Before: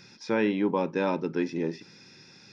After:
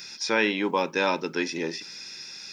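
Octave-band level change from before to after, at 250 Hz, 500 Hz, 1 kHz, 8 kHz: -2.5 dB, +0.5 dB, +4.5 dB, no reading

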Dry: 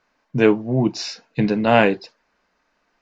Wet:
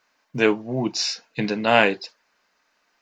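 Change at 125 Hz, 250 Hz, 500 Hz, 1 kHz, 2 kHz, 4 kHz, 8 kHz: -8.0 dB, -6.0 dB, -3.5 dB, -1.5 dB, +1.5 dB, +4.0 dB, no reading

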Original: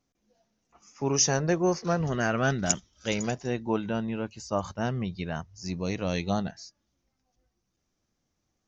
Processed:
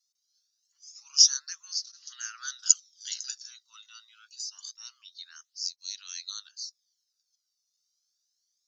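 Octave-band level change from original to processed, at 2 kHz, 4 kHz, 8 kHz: -13.0 dB, +8.5 dB, no reading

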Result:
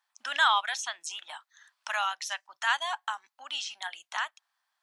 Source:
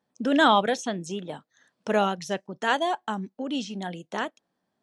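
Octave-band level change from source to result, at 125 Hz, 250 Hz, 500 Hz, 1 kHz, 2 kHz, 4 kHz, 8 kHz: under -40 dB, under -40 dB, -19.5 dB, -4.5 dB, 0.0 dB, +0.5 dB, +2.5 dB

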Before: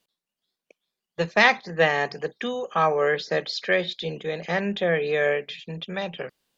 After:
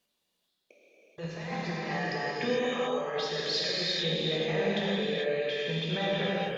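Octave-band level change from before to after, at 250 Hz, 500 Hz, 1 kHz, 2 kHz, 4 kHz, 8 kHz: -1.5 dB, -6.0 dB, -9.5 dB, -10.0 dB, +0.5 dB, no reading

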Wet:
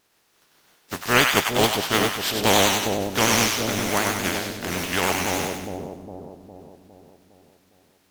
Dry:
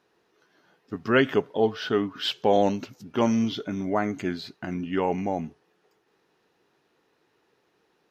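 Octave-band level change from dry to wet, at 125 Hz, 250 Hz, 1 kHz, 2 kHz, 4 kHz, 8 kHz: +4.0 dB, -0.5 dB, +5.5 dB, +10.0 dB, +11.0 dB, no reading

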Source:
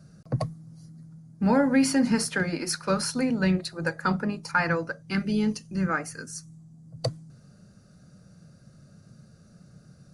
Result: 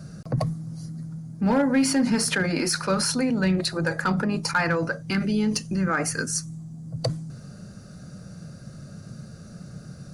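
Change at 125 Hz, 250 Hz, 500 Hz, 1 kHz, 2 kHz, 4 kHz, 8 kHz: +3.5 dB, +1.5 dB, +2.0 dB, +1.5 dB, +2.5 dB, +5.5 dB, +6.0 dB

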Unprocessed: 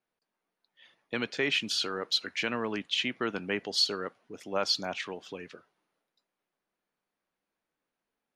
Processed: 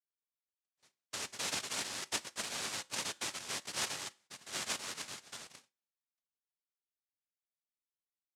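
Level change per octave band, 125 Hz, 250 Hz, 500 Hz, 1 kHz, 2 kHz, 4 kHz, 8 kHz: -10.5 dB, -16.0 dB, -15.5 dB, -6.5 dB, -8.5 dB, -9.5 dB, +4.5 dB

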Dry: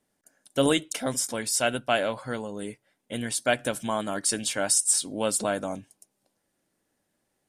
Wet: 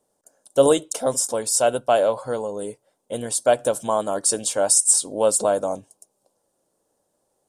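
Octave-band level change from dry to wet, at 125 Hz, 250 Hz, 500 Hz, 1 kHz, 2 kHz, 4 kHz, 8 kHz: 0.0 dB, +0.5 dB, +9.0 dB, +6.5 dB, -4.0 dB, -0.5 dB, +6.0 dB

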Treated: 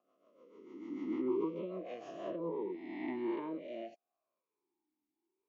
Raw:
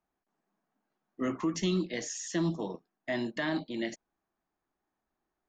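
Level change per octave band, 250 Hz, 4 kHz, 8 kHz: -5.5 dB, -20.0 dB, under -30 dB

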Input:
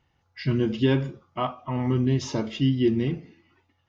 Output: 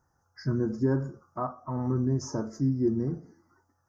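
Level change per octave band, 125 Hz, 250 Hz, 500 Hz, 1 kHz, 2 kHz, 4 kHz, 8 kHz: -4.0 dB, -4.0 dB, -4.5 dB, -4.5 dB, -11.0 dB, -15.0 dB, no reading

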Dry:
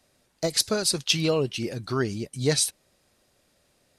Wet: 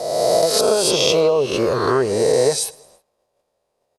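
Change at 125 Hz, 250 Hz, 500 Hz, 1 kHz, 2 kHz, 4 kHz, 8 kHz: +0.5 dB, +4.5 dB, +13.5 dB, +14.0 dB, +5.0 dB, +5.0 dB, +4.5 dB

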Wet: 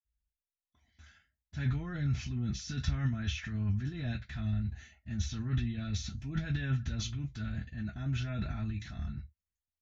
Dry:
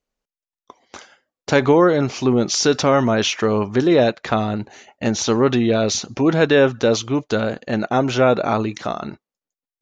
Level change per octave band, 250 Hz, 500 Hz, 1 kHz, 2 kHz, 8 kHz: -19.0 dB, -36.5 dB, -29.5 dB, -19.5 dB, -21.0 dB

